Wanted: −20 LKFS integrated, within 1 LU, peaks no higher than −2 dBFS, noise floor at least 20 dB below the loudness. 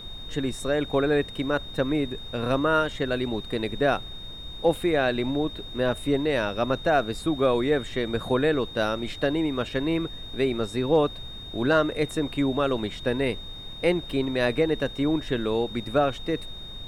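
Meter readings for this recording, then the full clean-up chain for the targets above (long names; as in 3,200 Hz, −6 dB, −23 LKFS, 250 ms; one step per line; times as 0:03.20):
interfering tone 3,700 Hz; level of the tone −39 dBFS; background noise floor −39 dBFS; target noise floor −46 dBFS; integrated loudness −26.0 LKFS; sample peak −9.5 dBFS; target loudness −20.0 LKFS
→ notch filter 3,700 Hz, Q 30
noise reduction from a noise print 7 dB
level +6 dB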